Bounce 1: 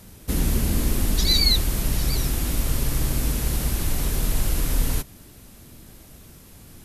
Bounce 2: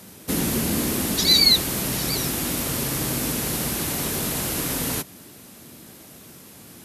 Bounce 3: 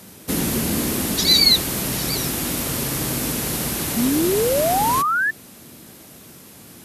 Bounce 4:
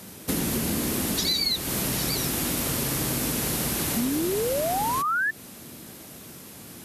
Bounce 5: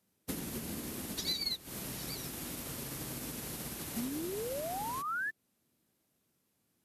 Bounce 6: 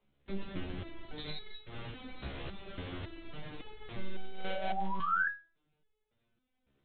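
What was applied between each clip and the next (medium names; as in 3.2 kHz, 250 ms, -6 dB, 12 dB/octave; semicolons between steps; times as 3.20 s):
high-pass 170 Hz 12 dB/octave; trim +4.5 dB
painted sound rise, 3.96–5.31 s, 220–1800 Hz -21 dBFS; trim +1.5 dB
compression 6:1, threshold -23 dBFS, peak gain reduction 12 dB
upward expansion 2.5:1, over -40 dBFS; trim -8.5 dB
monotone LPC vocoder at 8 kHz 190 Hz; resonator arpeggio 3.6 Hz 69–430 Hz; trim +12.5 dB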